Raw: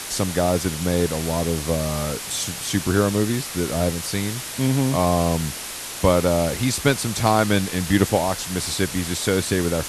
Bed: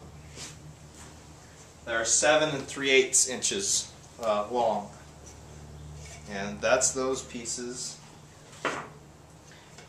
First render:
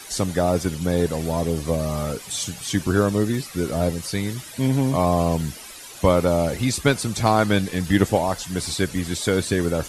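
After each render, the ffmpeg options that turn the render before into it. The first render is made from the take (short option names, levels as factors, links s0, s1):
-af "afftdn=nr=13:nf=-33"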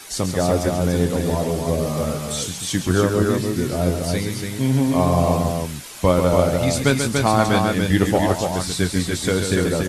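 -filter_complex "[0:a]asplit=2[s0][s1];[s1]adelay=22,volume=0.266[s2];[s0][s2]amix=inputs=2:normalize=0,aecho=1:1:137|288.6:0.447|0.631"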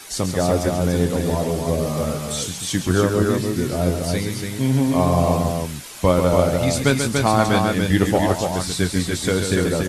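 -af anull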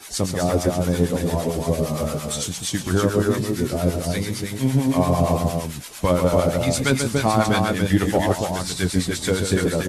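-filter_complex "[0:a]asplit=2[s0][s1];[s1]asoftclip=type=hard:threshold=0.178,volume=0.282[s2];[s0][s2]amix=inputs=2:normalize=0,acrossover=split=840[s3][s4];[s3]aeval=exprs='val(0)*(1-0.7/2+0.7/2*cos(2*PI*8.8*n/s))':c=same[s5];[s4]aeval=exprs='val(0)*(1-0.7/2-0.7/2*cos(2*PI*8.8*n/s))':c=same[s6];[s5][s6]amix=inputs=2:normalize=0"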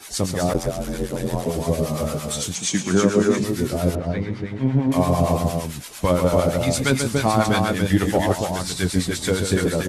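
-filter_complex "[0:a]asplit=3[s0][s1][s2];[s0]afade=t=out:st=0.53:d=0.02[s3];[s1]aeval=exprs='val(0)*sin(2*PI*44*n/s)':c=same,afade=t=in:st=0.53:d=0.02,afade=t=out:st=1.45:d=0.02[s4];[s2]afade=t=in:st=1.45:d=0.02[s5];[s3][s4][s5]amix=inputs=3:normalize=0,asettb=1/sr,asplit=3[s6][s7][s8];[s6]atrim=end=2.554[s9];[s7]atrim=start=2.55:end=3.44,asetpts=PTS-STARTPTS,afade=t=in:d=0.004:c=qsin,afade=t=out:st=0.886:d=0.004:c=qsin,highpass=f=110:w=0.5412,highpass=f=110:w=1.3066,equalizer=f=120:t=q:w=4:g=-9,equalizer=f=200:t=q:w=4:g=7,equalizer=f=400:t=q:w=4:g=3,equalizer=f=2300:t=q:w=4:g=7,equalizer=f=6500:t=q:w=4:g=8,lowpass=f=9500:w=0.5412,lowpass=f=9500:w=1.3066[s10];[s8]atrim=start=3.436[s11];[s9][s10]acrossfade=d=0.004:c1=hsin:c2=qsin[s12];[s12][s11]acrossfade=d=0.004:c1=qsin:c2=hsin,asettb=1/sr,asplit=3[s13][s14][s15];[s13]atrim=end=3.954[s16];[s14]atrim=start=3.95:end=4.92,asetpts=PTS-STARTPTS,afade=t=in:d=0.004:c=qsin,afade=t=out:st=0.966:d=0.004:c=qsin,lowpass=1900[s17];[s15]atrim=start=4.916[s18];[s16][s17]acrossfade=d=0.004:c1=hsin:c2=qsin[s19];[s19][s18]acrossfade=d=0.004:c1=qsin:c2=hsin"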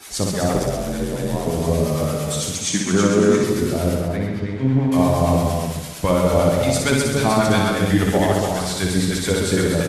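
-af "aecho=1:1:60|132|218.4|322.1|446.5:0.631|0.398|0.251|0.158|0.1"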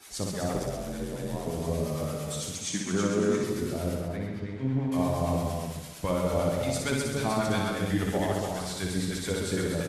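-af "volume=0.299"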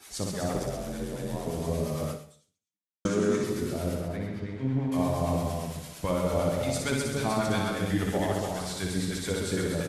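-filter_complex "[0:a]asplit=2[s0][s1];[s0]atrim=end=3.05,asetpts=PTS-STARTPTS,afade=t=out:st=2.11:d=0.94:c=exp[s2];[s1]atrim=start=3.05,asetpts=PTS-STARTPTS,afade=t=in:d=0.004:c=hsin[s3];[s2][s3]concat=n=2:v=0:a=1"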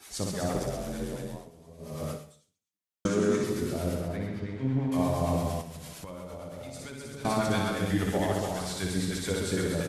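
-filter_complex "[0:a]asettb=1/sr,asplit=3[s0][s1][s2];[s0]atrim=end=5.614[s3];[s1]atrim=start=5.61:end=7.25,asetpts=PTS-STARTPTS,afade=t=in:d=0.004:c=qsin,afade=t=out:st=1.636:d=0.004:c=qsin,acompressor=threshold=0.0141:ratio=12:attack=3.2:release=140:knee=1:detection=peak[s4];[s2]atrim=start=7.246[s5];[s3][s4]acrossfade=d=0.004:c1=hsin:c2=qsin[s6];[s6][s5]acrossfade=d=0.004:c1=qsin:c2=hsin,asplit=3[s7][s8][s9];[s7]atrim=end=1.5,asetpts=PTS-STARTPTS,afade=t=out:st=1.12:d=0.38:silence=0.0891251[s10];[s8]atrim=start=1.5:end=1.78,asetpts=PTS-STARTPTS,volume=0.0891[s11];[s9]atrim=start=1.78,asetpts=PTS-STARTPTS,afade=t=in:d=0.38:silence=0.0891251[s12];[s10][s11][s12]concat=n=3:v=0:a=1"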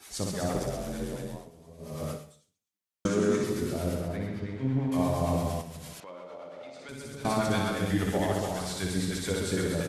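-filter_complex "[0:a]asettb=1/sr,asplit=3[s0][s1][s2];[s0]atrim=end=6.004[s3];[s1]atrim=start=6:end=6.89,asetpts=PTS-STARTPTS,afade=t=in:d=0.004:c=qsin,afade=t=out:st=0.886:d=0.004:c=qsin,highpass=370,lowpass=3600[s4];[s2]atrim=start=6.886[s5];[s3][s4]acrossfade=d=0.004:c1=hsin:c2=qsin[s6];[s6][s5]acrossfade=d=0.004:c1=qsin:c2=hsin"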